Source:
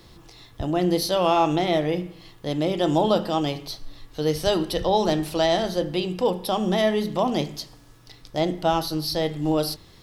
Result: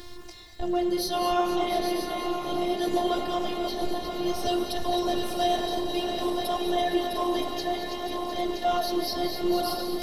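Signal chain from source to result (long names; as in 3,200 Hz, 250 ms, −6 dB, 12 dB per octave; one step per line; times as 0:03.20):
feedback delay that plays each chunk backwards 485 ms, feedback 80%, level −6.5 dB
reversed playback
upward compression, threshold −30 dBFS
reversed playback
phases set to zero 354 Hz
in parallel at −5 dB: hard clipping −21 dBFS, distortion −9 dB
on the sum: flanger 0.6 Hz, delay 0.5 ms, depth 6.8 ms, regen +86%
echo machine with several playback heads 235 ms, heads all three, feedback 46%, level −14 dB
reverb whose tail is shaped and stops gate 250 ms rising, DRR 7 dB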